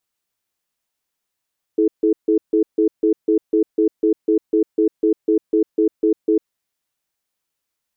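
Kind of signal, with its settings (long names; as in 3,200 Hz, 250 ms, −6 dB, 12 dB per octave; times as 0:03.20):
tone pair in a cadence 325 Hz, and 429 Hz, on 0.10 s, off 0.15 s, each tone −15 dBFS 4.75 s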